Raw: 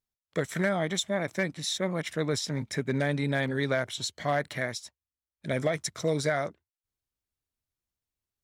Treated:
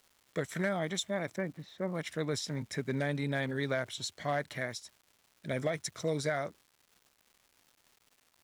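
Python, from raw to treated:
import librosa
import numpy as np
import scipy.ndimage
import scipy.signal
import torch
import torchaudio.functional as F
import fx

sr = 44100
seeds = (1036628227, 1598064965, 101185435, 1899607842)

y = fx.lowpass(x, sr, hz=1400.0, slope=12, at=(1.36, 1.94))
y = fx.dmg_crackle(y, sr, seeds[0], per_s=430.0, level_db=-47.0)
y = y * librosa.db_to_amplitude(-5.0)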